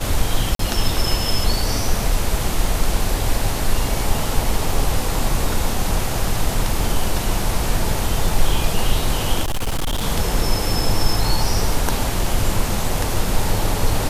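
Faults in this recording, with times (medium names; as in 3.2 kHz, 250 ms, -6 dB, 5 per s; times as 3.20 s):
0.55–0.59 s: dropout 43 ms
9.42–10.03 s: clipped -17.5 dBFS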